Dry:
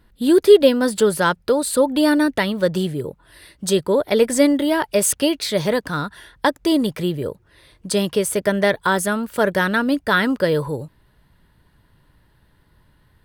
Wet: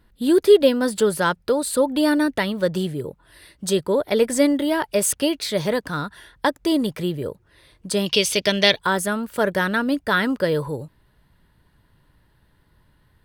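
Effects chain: 8.06–8.79 s: high-order bell 3.8 kHz +16 dB; trim -2.5 dB

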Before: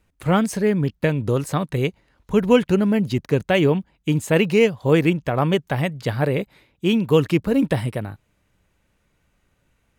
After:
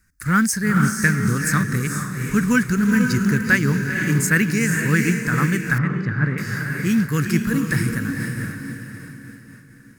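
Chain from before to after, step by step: FFT filter 230 Hz 0 dB, 690 Hz -23 dB, 1.6 kHz +12 dB, 3.2 kHz -14 dB, 5 kHz +9 dB; echo that smears into a reverb 461 ms, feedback 45%, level -4 dB; in parallel at -6 dB: short-mantissa float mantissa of 2-bit; 5.78–6.38 s: on the sum: tape spacing loss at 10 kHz 36 dB; random flutter of the level, depth 50%

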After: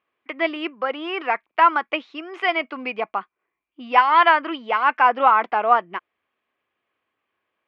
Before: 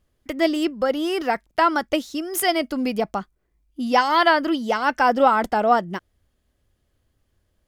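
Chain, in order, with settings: cabinet simulation 470–3000 Hz, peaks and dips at 570 Hz -5 dB, 1.1 kHz +8 dB, 2.4 kHz +9 dB

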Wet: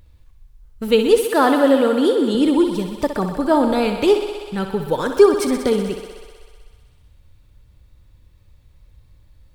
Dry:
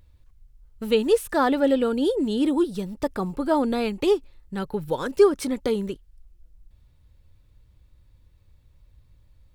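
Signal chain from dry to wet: 1.24–2.35 s: high-pass 150 Hz 12 dB/octave; on a send: thinning echo 63 ms, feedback 82%, high-pass 230 Hz, level -9 dB; on the sum: trim +5.5 dB

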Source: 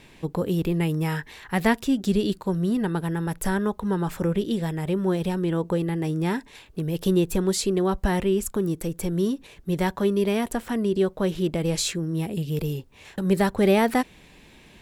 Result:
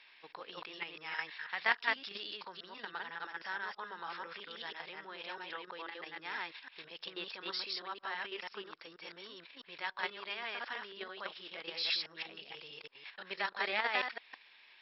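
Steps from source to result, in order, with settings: chunks repeated in reverse 163 ms, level -0.5 dB; level held to a coarse grid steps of 9 dB; Chebyshev high-pass 1.4 kHz, order 2; trim -2 dB; MP2 48 kbps 44.1 kHz

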